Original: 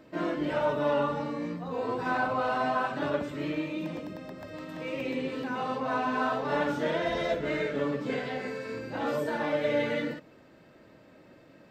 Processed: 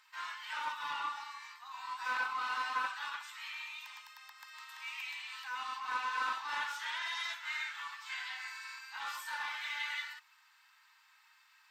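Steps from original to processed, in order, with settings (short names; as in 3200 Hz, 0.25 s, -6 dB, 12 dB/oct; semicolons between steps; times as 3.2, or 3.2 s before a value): steep high-pass 880 Hz 72 dB/oct; high shelf 3000 Hz +10.5 dB; Doppler distortion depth 0.16 ms; gain -5 dB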